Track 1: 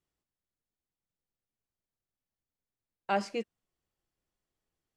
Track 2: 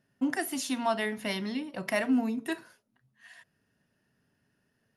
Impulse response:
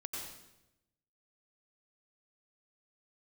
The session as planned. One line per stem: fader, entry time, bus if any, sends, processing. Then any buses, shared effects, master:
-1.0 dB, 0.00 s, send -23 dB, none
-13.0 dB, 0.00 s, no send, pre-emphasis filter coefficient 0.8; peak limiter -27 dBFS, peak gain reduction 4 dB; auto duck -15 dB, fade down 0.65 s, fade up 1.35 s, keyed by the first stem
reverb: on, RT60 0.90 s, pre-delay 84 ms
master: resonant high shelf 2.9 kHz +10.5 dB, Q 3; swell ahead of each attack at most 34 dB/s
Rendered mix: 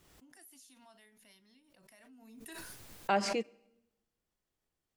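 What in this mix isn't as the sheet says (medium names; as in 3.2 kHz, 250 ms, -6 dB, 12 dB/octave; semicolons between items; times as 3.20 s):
stem 2 -13.0 dB -> -21.0 dB; master: missing resonant high shelf 2.9 kHz +10.5 dB, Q 3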